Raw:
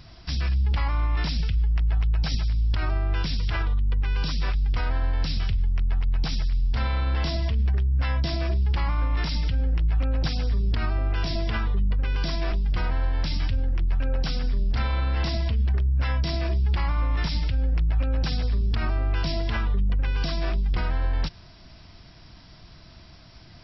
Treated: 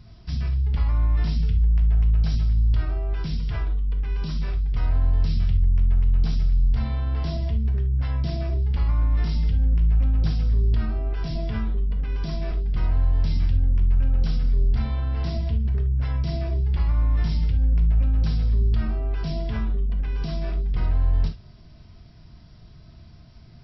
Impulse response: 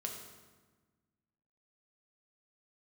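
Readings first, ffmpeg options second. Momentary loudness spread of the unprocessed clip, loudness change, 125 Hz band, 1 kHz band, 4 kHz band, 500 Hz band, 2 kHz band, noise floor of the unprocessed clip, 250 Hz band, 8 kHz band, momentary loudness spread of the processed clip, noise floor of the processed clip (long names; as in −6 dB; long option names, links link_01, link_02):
3 LU, +2.0 dB, +2.5 dB, −6.5 dB, −8.5 dB, −2.5 dB, −9.0 dB, −48 dBFS, +1.0 dB, can't be measured, 7 LU, −47 dBFS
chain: -filter_complex "[0:a]lowshelf=frequency=360:gain=11.5[link_01];[1:a]atrim=start_sample=2205,atrim=end_sample=3528[link_02];[link_01][link_02]afir=irnorm=-1:irlink=0,volume=-7dB"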